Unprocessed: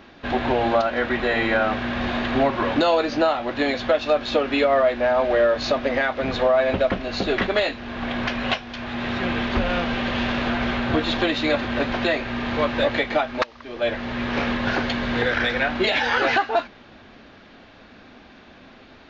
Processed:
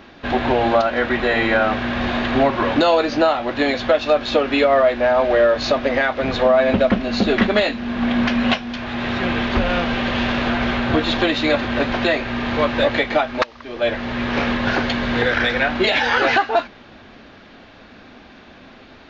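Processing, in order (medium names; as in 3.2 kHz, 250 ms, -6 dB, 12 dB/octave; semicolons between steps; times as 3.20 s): 6.45–8.77 s: peaking EQ 220 Hz +12 dB 0.32 oct; trim +3.5 dB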